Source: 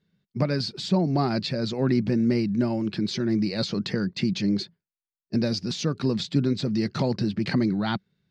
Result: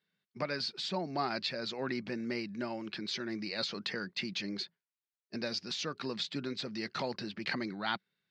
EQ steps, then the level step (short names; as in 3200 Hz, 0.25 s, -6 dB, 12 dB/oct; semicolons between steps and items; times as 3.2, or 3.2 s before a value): band-pass 2100 Hz, Q 0.58; -1.5 dB